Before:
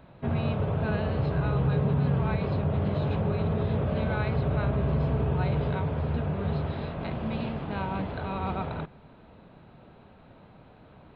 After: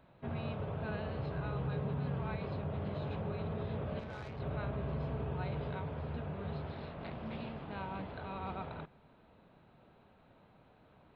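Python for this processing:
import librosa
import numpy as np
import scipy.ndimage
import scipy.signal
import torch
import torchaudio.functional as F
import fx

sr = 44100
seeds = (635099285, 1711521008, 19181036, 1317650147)

y = fx.low_shelf(x, sr, hz=340.0, db=-4.0)
y = fx.tube_stage(y, sr, drive_db=32.0, bias=0.65, at=(3.99, 4.4))
y = fx.doppler_dist(y, sr, depth_ms=0.26, at=(6.61, 7.4))
y = y * librosa.db_to_amplitude(-8.5)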